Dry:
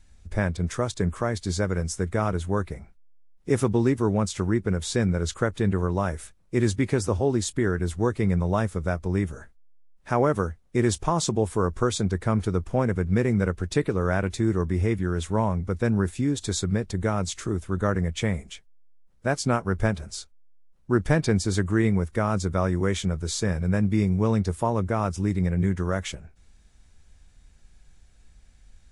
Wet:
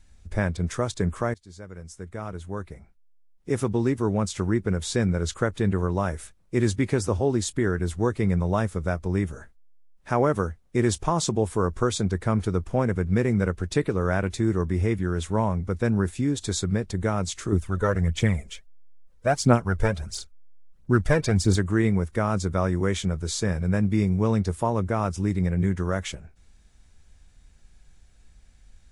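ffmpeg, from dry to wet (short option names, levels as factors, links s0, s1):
-filter_complex "[0:a]asettb=1/sr,asplit=3[s0][s1][s2];[s0]atrim=end=17.524[s3];[s1]atrim=start=17.52:end=21.56,asetpts=PTS-STARTPTS,afade=t=in:d=0.004:c=qsin,afade=t=out:st=4.036:d=0.004:c=qsin,aphaser=in_gain=1:out_gain=1:delay=2.3:decay=0.55:speed=1.5:type=triangular[s4];[s2]atrim=start=21.556[s5];[s3][s4]acrossfade=d=0.004:c1=hsin:c2=qsin[s6];[s6][s5]acrossfade=d=0.004:c1=qsin:c2=hsin,asplit=2[s7][s8];[s7]atrim=end=1.34,asetpts=PTS-STARTPTS,afade=t=out:st=1.336:d=0.004:c=hsin:silence=0.0707946[s9];[s8]atrim=start=1.34,asetpts=PTS-STARTPTS,afade=t=in:d=3.17:silence=0.0707946[s10];[s9][s10]concat=n=2:v=0:a=1"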